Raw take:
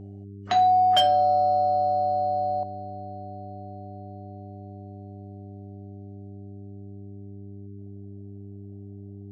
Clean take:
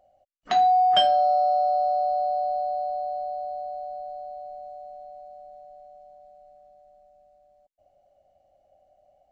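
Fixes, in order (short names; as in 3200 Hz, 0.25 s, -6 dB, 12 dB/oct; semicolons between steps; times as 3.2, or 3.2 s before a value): clip repair -12.5 dBFS; de-hum 99.8 Hz, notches 4; gain correction +9.5 dB, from 2.63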